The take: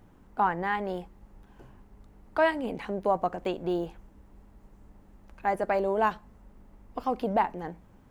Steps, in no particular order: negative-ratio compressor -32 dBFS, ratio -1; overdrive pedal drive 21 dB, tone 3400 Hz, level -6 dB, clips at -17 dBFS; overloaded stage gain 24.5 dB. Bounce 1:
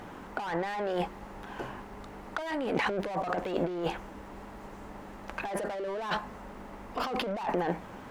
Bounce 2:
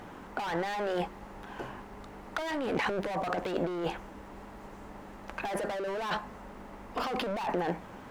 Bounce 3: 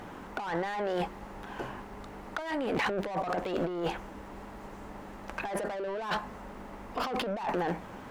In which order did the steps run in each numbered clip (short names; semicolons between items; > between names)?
overloaded stage > overdrive pedal > negative-ratio compressor; overdrive pedal > overloaded stage > negative-ratio compressor; overdrive pedal > negative-ratio compressor > overloaded stage